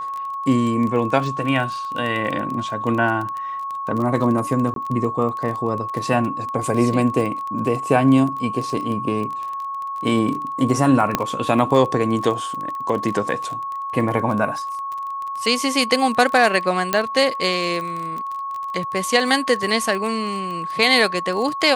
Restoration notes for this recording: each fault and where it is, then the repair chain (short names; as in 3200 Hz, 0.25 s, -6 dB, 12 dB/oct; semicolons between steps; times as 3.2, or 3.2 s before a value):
crackle 21/s -25 dBFS
tone 1100 Hz -25 dBFS
4.74–4.76 gap 22 ms
11.15 pop -3 dBFS
16.93 pop -4 dBFS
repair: de-click; notch 1100 Hz, Q 30; interpolate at 4.74, 22 ms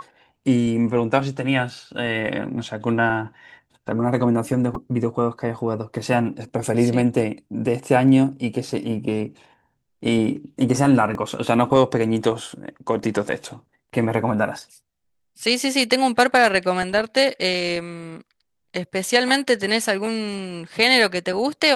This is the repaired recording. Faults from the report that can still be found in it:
11.15 pop
16.93 pop